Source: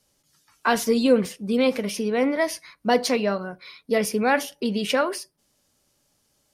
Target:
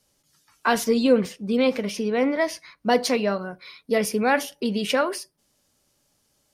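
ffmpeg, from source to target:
-filter_complex "[0:a]asettb=1/sr,asplit=3[a][b][c];[a]atrim=end=0.844[d];[b]atrim=start=0.84:end=2.87,asetpts=PTS-STARTPTS,afade=t=in:d=0.004:c=qsin,afade=t=out:st=2.026:d=0.004:c=qsin,equalizer=f=11k:t=o:w=0.79:g=-8[e];[c]atrim=start=2.866[f];[d][e]acrossfade=d=0.004:c1=hsin:c2=qsin[g];[g][f]acrossfade=d=0.004:c1=qsin:c2=hsin"

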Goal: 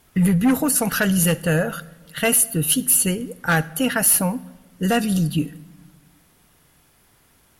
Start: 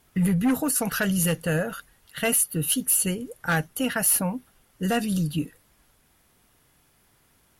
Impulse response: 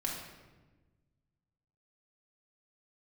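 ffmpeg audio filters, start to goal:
-filter_complex "[0:a]asplit=2[a][b];[1:a]atrim=start_sample=2205,adelay=63[c];[b][c]afir=irnorm=-1:irlink=0,volume=-22.5dB[d];[a][d]amix=inputs=2:normalize=0,volume=5dB"

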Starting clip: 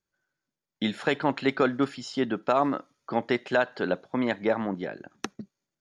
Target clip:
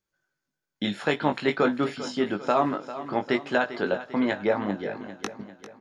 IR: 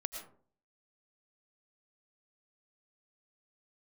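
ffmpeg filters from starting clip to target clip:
-filter_complex "[0:a]asplit=2[a][b];[b]adelay=20,volume=-5.5dB[c];[a][c]amix=inputs=2:normalize=0,aecho=1:1:397|794|1191|1588|1985:0.211|0.108|0.055|0.028|0.0143"

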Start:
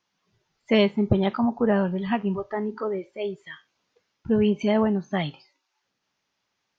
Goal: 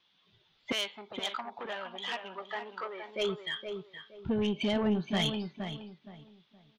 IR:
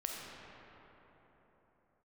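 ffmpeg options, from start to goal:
-filter_complex "[0:a]acompressor=threshold=-24dB:ratio=6,lowpass=f=3.5k:t=q:w=5.8,asoftclip=type=tanh:threshold=-23.5dB,asettb=1/sr,asplit=3[a][b][c];[a]atrim=end=0.724[d];[b]atrim=start=0.72:end=3.09,asetpts=PTS-STARTPTS,afade=t=in:d=0.004:c=qsin,afade=t=out:st=2.366:d=0.004:c=qsin,highpass=840[e];[c]atrim=start=3.086[f];[d][e]acrossfade=d=0.004:c1=hsin:c2=qsin[g];[g][f]acrossfade=d=0.004:c1=qsin:c2=hsin,asplit=2[h][i];[i]adelay=469,lowpass=f=1.6k:p=1,volume=-6.5dB,asplit=2[j][k];[k]adelay=469,lowpass=f=1.6k:p=1,volume=0.28,asplit=2[l][m];[m]adelay=469,lowpass=f=1.6k:p=1,volume=0.28,asplit=2[n][o];[o]adelay=469,lowpass=f=1.6k:p=1,volume=0.28[p];[h][j][l][n][p]amix=inputs=5:normalize=0"

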